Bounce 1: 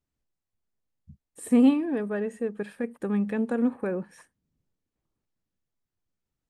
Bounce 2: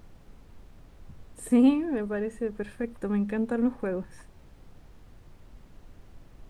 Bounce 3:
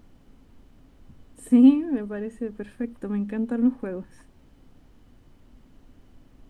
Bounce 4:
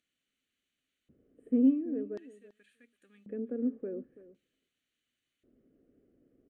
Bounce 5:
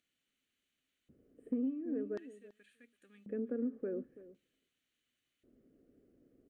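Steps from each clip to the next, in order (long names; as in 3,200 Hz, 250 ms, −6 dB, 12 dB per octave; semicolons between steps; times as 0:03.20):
background noise brown −47 dBFS; level −1 dB
hollow resonant body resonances 260/3,000 Hz, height 10 dB; level −3.5 dB
phaser with its sweep stopped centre 2,200 Hz, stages 4; auto-filter band-pass square 0.46 Hz 440–5,200 Hz; slap from a distant wall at 57 metres, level −17 dB
dynamic equaliser 1,400 Hz, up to +7 dB, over −55 dBFS, Q 1.4; downward compressor 12 to 1, threshold −32 dBFS, peak gain reduction 13.5 dB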